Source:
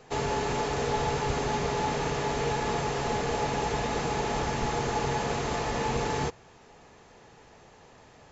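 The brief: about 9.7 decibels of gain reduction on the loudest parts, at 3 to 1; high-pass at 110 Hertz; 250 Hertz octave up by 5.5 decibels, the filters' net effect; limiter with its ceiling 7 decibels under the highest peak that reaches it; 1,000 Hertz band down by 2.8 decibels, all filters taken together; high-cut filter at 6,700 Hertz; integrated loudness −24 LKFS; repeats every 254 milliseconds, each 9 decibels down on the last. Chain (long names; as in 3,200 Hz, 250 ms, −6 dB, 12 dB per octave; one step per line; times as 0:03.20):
high-pass filter 110 Hz
low-pass filter 6,700 Hz
parametric band 250 Hz +7.5 dB
parametric band 1,000 Hz −4 dB
downward compressor 3 to 1, threshold −38 dBFS
brickwall limiter −32.5 dBFS
repeating echo 254 ms, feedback 35%, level −9 dB
level +17 dB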